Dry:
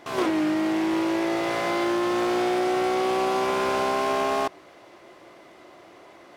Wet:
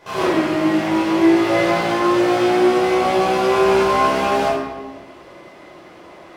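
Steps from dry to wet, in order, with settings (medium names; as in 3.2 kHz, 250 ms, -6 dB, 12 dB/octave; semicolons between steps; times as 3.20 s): simulated room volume 670 m³, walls mixed, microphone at 5.1 m; trim -4 dB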